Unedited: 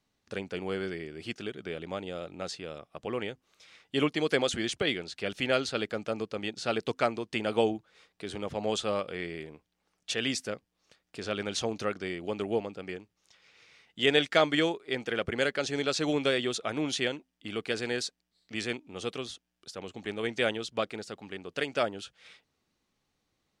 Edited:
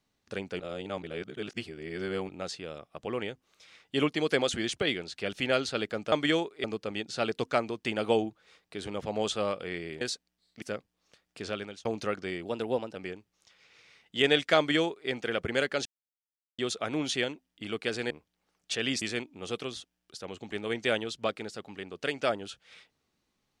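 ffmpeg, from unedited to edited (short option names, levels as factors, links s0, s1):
-filter_complex "[0:a]asplit=14[s0][s1][s2][s3][s4][s5][s6][s7][s8][s9][s10][s11][s12][s13];[s0]atrim=end=0.602[s14];[s1]atrim=start=0.598:end=2.292,asetpts=PTS-STARTPTS,areverse[s15];[s2]atrim=start=2.288:end=6.122[s16];[s3]atrim=start=14.408:end=14.932[s17];[s4]atrim=start=6.118:end=9.492[s18];[s5]atrim=start=17.938:end=18.552[s19];[s6]atrim=start=10.398:end=11.63,asetpts=PTS-STARTPTS,afade=t=out:st=0.842:d=0.39[s20];[s7]atrim=start=11.63:end=12.234,asetpts=PTS-STARTPTS,afade=t=in:d=0.004:c=hsin[s21];[s8]atrim=start=12.23:end=12.79,asetpts=PTS-STARTPTS,asetrate=48951,aresample=44100[s22];[s9]atrim=start=12.786:end=15.69,asetpts=PTS-STARTPTS,afade=t=out:st=2.9:d=0.004:c=hsin[s23];[s10]atrim=start=15.69:end=16.42,asetpts=PTS-STARTPTS,volume=0[s24];[s11]atrim=start=16.42:end=17.942,asetpts=PTS-STARTPTS,afade=t=in:d=0.004:c=hsin[s25];[s12]atrim=start=9.488:end=10.402[s26];[s13]atrim=start=18.548[s27];[s14][s15]acrossfade=d=0.004:c1=hsin:c2=hsin[s28];[s28][s16]acrossfade=d=0.004:c1=hsin:c2=hsin[s29];[s29][s17]acrossfade=d=0.004:c1=hsin:c2=hsin[s30];[s30][s18]acrossfade=d=0.004:c1=hsin:c2=hsin[s31];[s31][s19]acrossfade=d=0.004:c1=hsin:c2=hsin[s32];[s20][s21]concat=n=2:v=0:a=1[s33];[s32][s33]acrossfade=d=0.004:c1=hsin:c2=hsin[s34];[s34][s22]acrossfade=d=0.004:c1=hsin:c2=hsin[s35];[s23][s24][s25]concat=n=3:v=0:a=1[s36];[s35][s36]acrossfade=d=0.004:c1=hsin:c2=hsin[s37];[s37][s26]acrossfade=d=0.004:c1=hsin:c2=hsin[s38];[s38][s27]acrossfade=d=0.004:c1=hsin:c2=hsin"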